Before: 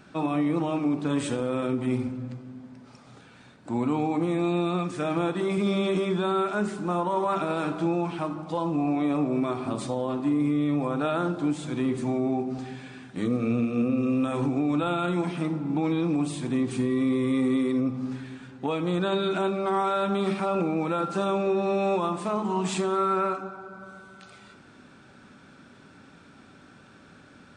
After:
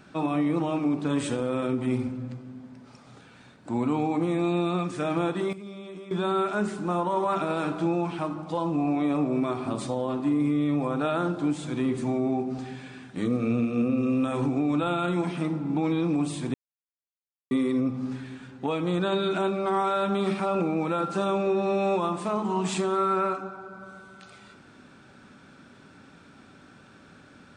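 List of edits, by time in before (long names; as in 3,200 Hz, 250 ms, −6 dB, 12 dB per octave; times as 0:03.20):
0:05.18–0:06.46: duck −15.5 dB, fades 0.35 s logarithmic
0:16.54–0:17.51: silence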